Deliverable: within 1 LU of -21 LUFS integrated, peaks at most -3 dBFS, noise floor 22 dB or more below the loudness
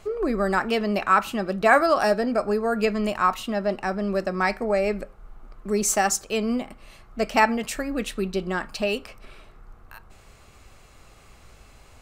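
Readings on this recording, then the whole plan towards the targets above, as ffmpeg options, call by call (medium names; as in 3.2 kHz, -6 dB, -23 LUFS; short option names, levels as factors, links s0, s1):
loudness -24.0 LUFS; peak level -4.0 dBFS; loudness target -21.0 LUFS
-> -af "volume=1.41,alimiter=limit=0.708:level=0:latency=1"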